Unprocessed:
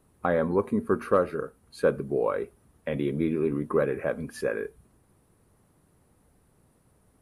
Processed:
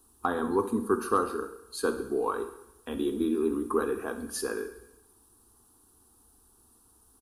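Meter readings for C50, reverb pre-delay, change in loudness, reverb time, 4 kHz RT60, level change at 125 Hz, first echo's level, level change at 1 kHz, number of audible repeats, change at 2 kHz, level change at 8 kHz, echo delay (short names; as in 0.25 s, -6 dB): 10.5 dB, 3 ms, -2.5 dB, 0.85 s, 0.90 s, -11.5 dB, -14.5 dB, +1.5 dB, 2, -2.5 dB, n/a, 67 ms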